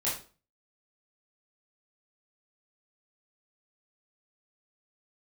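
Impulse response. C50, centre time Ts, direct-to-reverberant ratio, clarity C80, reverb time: 5.5 dB, 36 ms, −8.0 dB, 11.5 dB, 0.35 s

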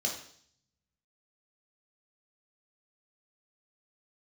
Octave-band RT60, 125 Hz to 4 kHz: 1.4, 0.70, 0.60, 0.55, 0.60, 0.70 seconds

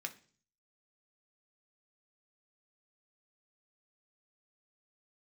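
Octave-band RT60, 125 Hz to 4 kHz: 0.75, 0.60, 0.45, 0.40, 0.40, 0.50 seconds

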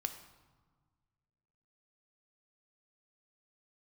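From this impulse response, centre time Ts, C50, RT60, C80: 15 ms, 10.0 dB, 1.5 s, 12.0 dB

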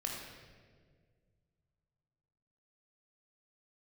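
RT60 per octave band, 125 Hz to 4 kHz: 3.2, 2.4, 2.1, 1.4, 1.4, 1.2 seconds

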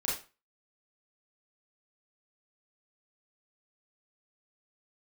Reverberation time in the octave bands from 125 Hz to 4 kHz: 0.35, 0.30, 0.30, 0.35, 0.30, 0.30 seconds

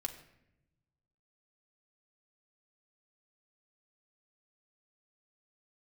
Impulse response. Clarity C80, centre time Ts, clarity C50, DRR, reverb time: 13.0 dB, 12 ms, 11.0 dB, 3.5 dB, 0.85 s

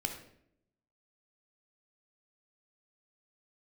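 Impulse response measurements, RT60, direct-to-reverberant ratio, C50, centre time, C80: 0.70 s, 4.5 dB, 7.5 dB, 19 ms, 10.5 dB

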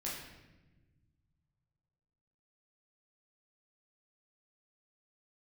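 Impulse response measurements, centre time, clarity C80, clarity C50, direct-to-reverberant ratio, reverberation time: 61 ms, 4.5 dB, 2.0 dB, −6.0 dB, non-exponential decay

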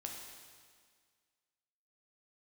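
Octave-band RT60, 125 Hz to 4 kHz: 1.8, 1.9, 1.8, 1.8, 1.8, 1.8 seconds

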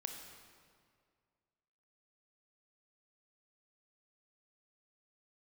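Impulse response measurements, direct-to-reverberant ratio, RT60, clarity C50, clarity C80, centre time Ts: 3.5 dB, 2.1 s, 5.0 dB, 6.0 dB, 50 ms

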